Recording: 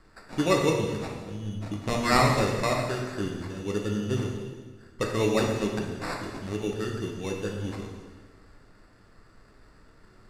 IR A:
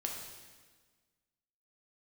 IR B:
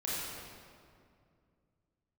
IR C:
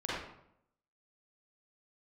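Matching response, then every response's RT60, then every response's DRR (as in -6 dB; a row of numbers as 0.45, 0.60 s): A; 1.5, 2.3, 0.75 s; 0.0, -8.0, -8.5 dB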